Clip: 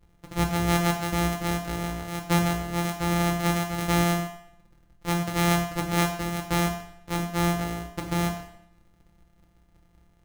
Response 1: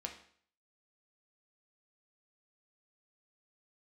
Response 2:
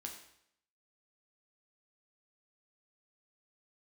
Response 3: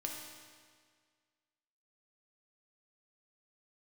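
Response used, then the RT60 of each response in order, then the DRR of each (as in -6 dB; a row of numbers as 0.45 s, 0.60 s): 2; 0.55 s, 0.70 s, 1.8 s; 2.0 dB, 1.0 dB, -0.5 dB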